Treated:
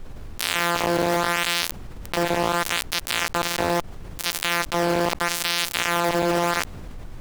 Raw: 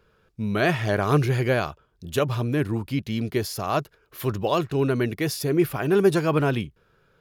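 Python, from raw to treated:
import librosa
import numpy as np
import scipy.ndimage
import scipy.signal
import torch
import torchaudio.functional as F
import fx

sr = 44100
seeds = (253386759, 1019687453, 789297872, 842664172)

p1 = np.r_[np.sort(x[:len(x) // 256 * 256].reshape(-1, 256), axis=1).ravel(), x[len(x) // 256 * 256:]]
p2 = fx.highpass(p1, sr, hz=67.0, slope=6)
p3 = fx.peak_eq(p2, sr, hz=340.0, db=8.0, octaves=0.27)
p4 = fx.schmitt(p3, sr, flips_db=-22.0)
p5 = p3 + (p4 * 10.0 ** (-6.5 / 20.0))
p6 = fx.filter_lfo_highpass(p5, sr, shape='sine', hz=0.76, low_hz=470.0, high_hz=2900.0, q=1.6)
p7 = fx.power_curve(p6, sr, exponent=1.4)
p8 = fx.fuzz(p7, sr, gain_db=30.0, gate_db=-33.0)
p9 = fx.dmg_noise_colour(p8, sr, seeds[0], colour='brown', level_db=-65.0)
p10 = fx.env_flatten(p9, sr, amount_pct=70)
y = p10 * 10.0 ** (-3.0 / 20.0)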